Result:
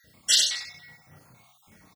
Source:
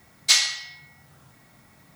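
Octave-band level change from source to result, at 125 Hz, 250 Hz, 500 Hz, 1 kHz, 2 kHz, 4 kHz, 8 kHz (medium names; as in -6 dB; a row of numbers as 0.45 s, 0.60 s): -2.5 dB, no reading, -1.0 dB, -11.0 dB, -7.0 dB, -1.0 dB, -1.0 dB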